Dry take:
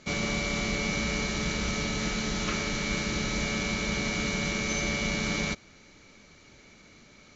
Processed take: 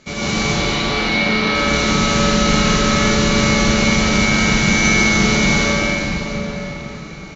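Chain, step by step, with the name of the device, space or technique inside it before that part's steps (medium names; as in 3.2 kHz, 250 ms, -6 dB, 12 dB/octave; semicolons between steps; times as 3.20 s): 0.43–1.55 s: Chebyshev band-pass 240–4300 Hz, order 3; cathedral (reverberation RT60 5.0 s, pre-delay 83 ms, DRR -11 dB); doubling 42 ms -7 dB; trim +3.5 dB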